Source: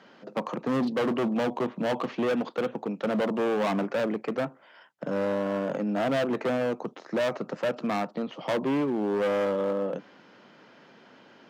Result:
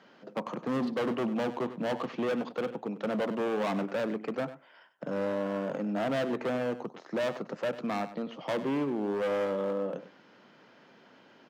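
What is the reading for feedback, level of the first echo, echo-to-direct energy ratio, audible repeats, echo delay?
no regular repeats, -13.5 dB, -13.5 dB, 1, 97 ms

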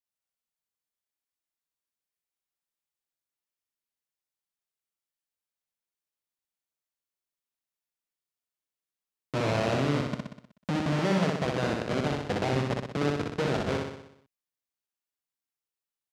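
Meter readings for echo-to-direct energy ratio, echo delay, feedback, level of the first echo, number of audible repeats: -1.5 dB, 62 ms, 57%, -3.0 dB, 7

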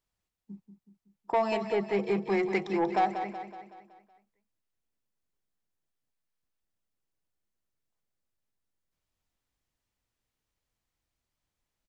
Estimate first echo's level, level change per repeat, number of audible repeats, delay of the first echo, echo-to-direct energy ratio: -9.0 dB, -6.0 dB, 5, 187 ms, -7.5 dB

